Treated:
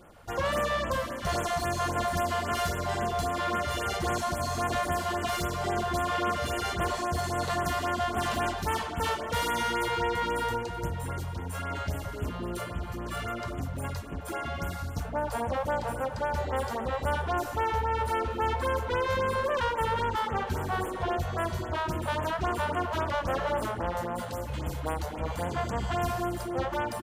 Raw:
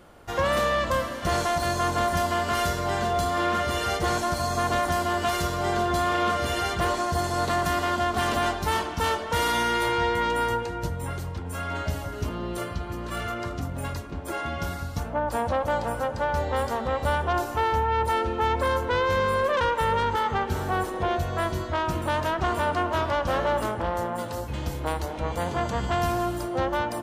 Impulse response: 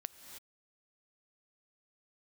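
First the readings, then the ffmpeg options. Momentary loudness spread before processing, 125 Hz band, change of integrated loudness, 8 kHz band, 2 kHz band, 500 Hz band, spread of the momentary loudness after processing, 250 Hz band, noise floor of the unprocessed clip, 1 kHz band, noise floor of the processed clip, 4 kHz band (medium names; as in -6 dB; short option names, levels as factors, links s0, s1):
8 LU, -3.0 dB, -4.0 dB, -3.5 dB, -4.5 dB, -4.5 dB, 7 LU, -4.5 dB, -34 dBFS, -4.5 dB, -37 dBFS, -4.5 dB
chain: -filter_complex "[0:a]asplit=2[s0][s1];[s1]asoftclip=type=hard:threshold=0.0266,volume=0.501[s2];[s0][s2]amix=inputs=2:normalize=0,aecho=1:1:928|1856|2784|3712:0.126|0.0567|0.0255|0.0115,afftfilt=real='re*(1-between(b*sr/1024,260*pow(5000/260,0.5+0.5*sin(2*PI*3.7*pts/sr))/1.41,260*pow(5000/260,0.5+0.5*sin(2*PI*3.7*pts/sr))*1.41))':imag='im*(1-between(b*sr/1024,260*pow(5000/260,0.5+0.5*sin(2*PI*3.7*pts/sr))/1.41,260*pow(5000/260,0.5+0.5*sin(2*PI*3.7*pts/sr))*1.41))':win_size=1024:overlap=0.75,volume=0.562"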